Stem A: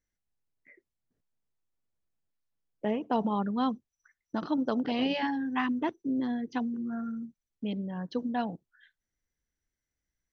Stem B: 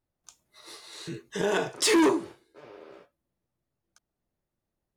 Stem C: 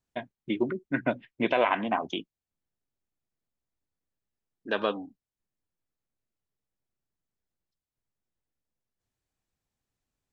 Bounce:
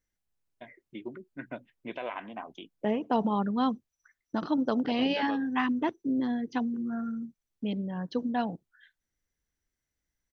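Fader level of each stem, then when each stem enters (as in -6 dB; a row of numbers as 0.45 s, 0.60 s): +1.5 dB, mute, -12.5 dB; 0.00 s, mute, 0.45 s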